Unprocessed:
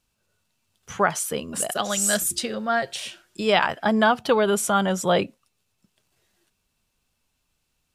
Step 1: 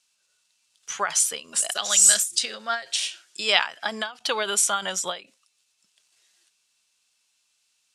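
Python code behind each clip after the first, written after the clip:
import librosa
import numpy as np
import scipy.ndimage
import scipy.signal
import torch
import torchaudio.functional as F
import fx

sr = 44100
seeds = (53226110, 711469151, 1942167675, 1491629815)

y = fx.weighting(x, sr, curve='ITU-R 468')
y = fx.end_taper(y, sr, db_per_s=180.0)
y = y * librosa.db_to_amplitude(-3.0)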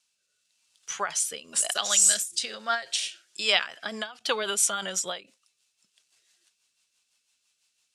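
y = fx.rotary_switch(x, sr, hz=1.0, then_hz=6.0, switch_at_s=3.13)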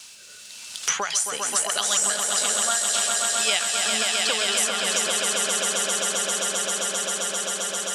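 y = fx.echo_swell(x, sr, ms=132, loudest=5, wet_db=-7.0)
y = fx.band_squash(y, sr, depth_pct=100)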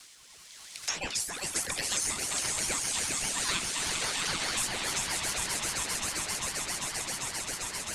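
y = fx.dispersion(x, sr, late='lows', ms=126.0, hz=320.0)
y = fx.ring_lfo(y, sr, carrier_hz=1000.0, swing_pct=60, hz=4.9)
y = y * librosa.db_to_amplitude(-5.5)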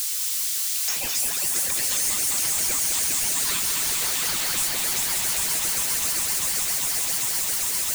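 y = x + 0.5 * 10.0 ** (-21.5 / 20.0) * np.diff(np.sign(x), prepend=np.sign(x[:1]))
y = y + 10.0 ** (-5.5 / 20.0) * np.pad(y, (int(210 * sr / 1000.0), 0))[:len(y)]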